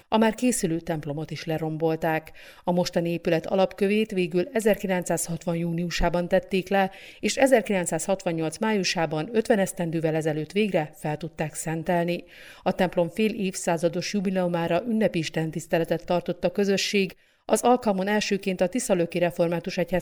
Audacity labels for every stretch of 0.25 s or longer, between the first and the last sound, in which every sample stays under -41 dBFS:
17.120000	17.490000	silence